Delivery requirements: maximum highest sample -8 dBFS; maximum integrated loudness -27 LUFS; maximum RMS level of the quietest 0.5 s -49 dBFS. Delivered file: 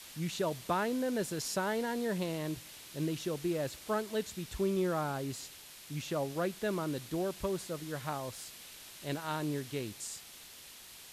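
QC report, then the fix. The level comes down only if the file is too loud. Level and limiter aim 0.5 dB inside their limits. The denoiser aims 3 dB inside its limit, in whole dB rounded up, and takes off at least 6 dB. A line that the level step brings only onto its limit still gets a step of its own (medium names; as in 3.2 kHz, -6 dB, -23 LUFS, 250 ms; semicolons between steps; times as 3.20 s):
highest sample -19.0 dBFS: pass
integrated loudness -36.0 LUFS: pass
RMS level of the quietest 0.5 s -52 dBFS: pass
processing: none needed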